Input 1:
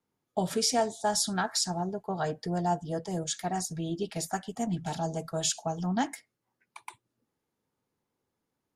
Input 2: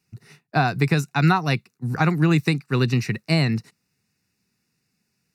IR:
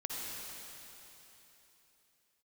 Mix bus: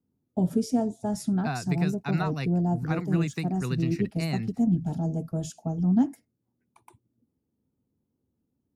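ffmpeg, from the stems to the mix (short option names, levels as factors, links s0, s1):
-filter_complex "[0:a]equalizer=f=250:t=o:w=1:g=10,equalizer=f=1000:t=o:w=1:g=-5,equalizer=f=2000:t=o:w=1:g=-11,equalizer=f=4000:t=o:w=1:g=-11,equalizer=f=8000:t=o:w=1:g=-7,volume=0.668[s0];[1:a]highpass=f=240:p=1,adelay=900,volume=0.237[s1];[s0][s1]amix=inputs=2:normalize=0,equalizer=f=72:w=0.59:g=15"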